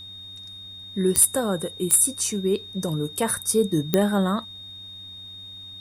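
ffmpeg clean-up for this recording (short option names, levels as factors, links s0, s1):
-af "adeclick=t=4,bandreject=f=94.7:t=h:w=4,bandreject=f=189.4:t=h:w=4,bandreject=f=284.1:t=h:w=4,bandreject=f=3700:w=30,agate=range=0.0891:threshold=0.0224"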